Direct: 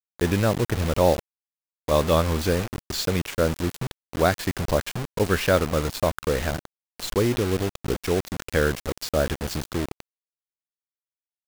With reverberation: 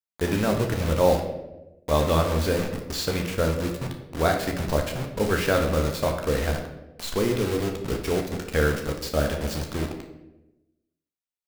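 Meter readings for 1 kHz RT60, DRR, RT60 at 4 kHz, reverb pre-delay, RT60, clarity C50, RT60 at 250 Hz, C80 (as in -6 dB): 0.80 s, 2.0 dB, 0.65 s, 4 ms, 1.0 s, 7.0 dB, 1.2 s, 9.5 dB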